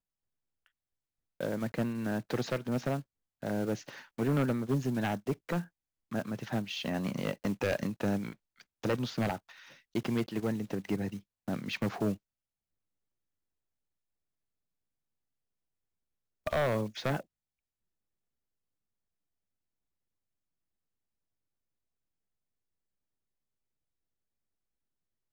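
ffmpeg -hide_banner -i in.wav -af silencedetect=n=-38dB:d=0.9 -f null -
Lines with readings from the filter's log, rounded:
silence_start: 0.00
silence_end: 1.41 | silence_duration: 1.41
silence_start: 12.14
silence_end: 16.47 | silence_duration: 4.32
silence_start: 17.20
silence_end: 25.32 | silence_duration: 8.12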